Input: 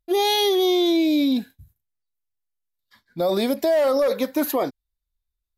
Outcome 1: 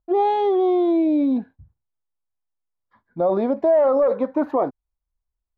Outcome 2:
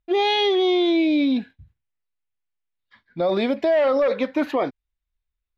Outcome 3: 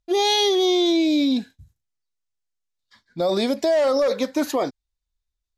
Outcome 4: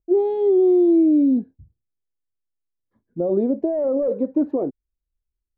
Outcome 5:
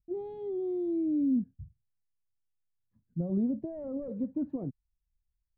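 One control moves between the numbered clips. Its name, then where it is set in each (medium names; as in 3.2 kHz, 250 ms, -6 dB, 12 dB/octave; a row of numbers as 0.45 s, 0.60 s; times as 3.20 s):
resonant low-pass, frequency: 1 kHz, 2.6 kHz, 6.7 kHz, 400 Hz, 160 Hz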